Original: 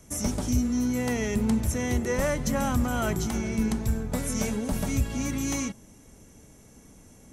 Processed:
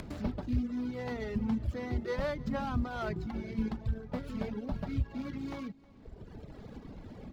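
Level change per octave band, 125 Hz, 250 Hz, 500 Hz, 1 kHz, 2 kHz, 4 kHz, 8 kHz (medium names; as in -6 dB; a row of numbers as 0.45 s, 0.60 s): -7.0 dB, -8.0 dB, -7.5 dB, -7.0 dB, -9.5 dB, -12.0 dB, under -30 dB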